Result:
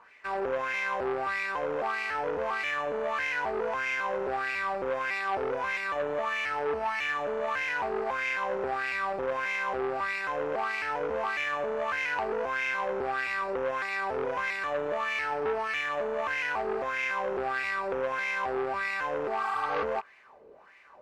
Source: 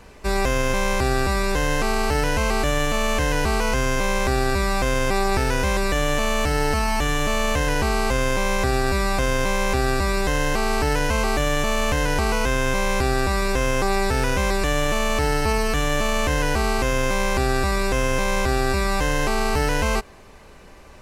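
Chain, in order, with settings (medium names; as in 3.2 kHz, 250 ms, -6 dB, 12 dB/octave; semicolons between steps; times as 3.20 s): rattle on loud lows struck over -35 dBFS, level -21 dBFS; wah-wah 1.6 Hz 420–2200 Hz, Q 3.9; spectral replace 19.44–19.81 s, 750–7000 Hz before; transformer saturation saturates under 1.3 kHz; trim +2.5 dB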